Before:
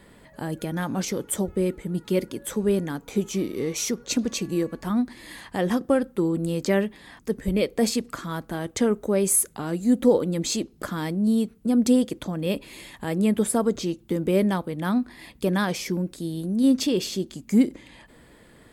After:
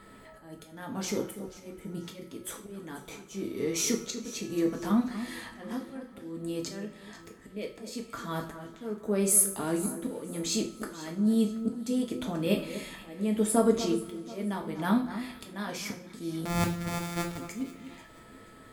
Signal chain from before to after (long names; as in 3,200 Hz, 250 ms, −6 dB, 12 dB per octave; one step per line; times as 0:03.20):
0:16.45–0:17.38: samples sorted by size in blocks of 256 samples
steady tone 1,300 Hz −49 dBFS
volume swells 614 ms
delay that swaps between a low-pass and a high-pass 243 ms, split 1,800 Hz, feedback 57%, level −11.5 dB
coupled-rooms reverb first 0.39 s, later 3.6 s, from −28 dB, DRR 0.5 dB
level −3.5 dB